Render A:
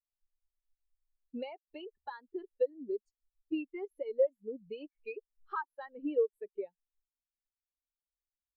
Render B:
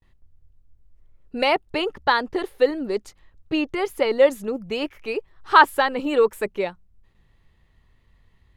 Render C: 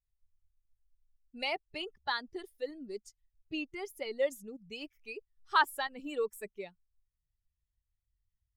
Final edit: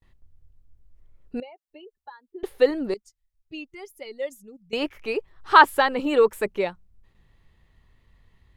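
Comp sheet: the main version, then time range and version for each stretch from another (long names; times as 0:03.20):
B
0:01.40–0:02.43: punch in from A
0:02.94–0:04.73: punch in from C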